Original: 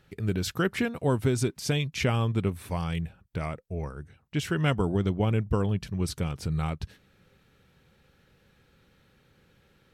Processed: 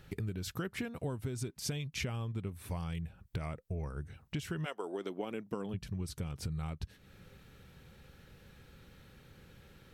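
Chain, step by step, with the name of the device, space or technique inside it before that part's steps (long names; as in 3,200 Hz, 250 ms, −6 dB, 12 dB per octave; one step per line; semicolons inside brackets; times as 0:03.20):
0:04.64–0:05.73: high-pass filter 430 Hz → 170 Hz 24 dB per octave
ASMR close-microphone chain (low-shelf EQ 120 Hz +6.5 dB; downward compressor 6 to 1, threshold −39 dBFS, peak gain reduction 19.5 dB; high-shelf EQ 8,100 Hz +5 dB)
level +3 dB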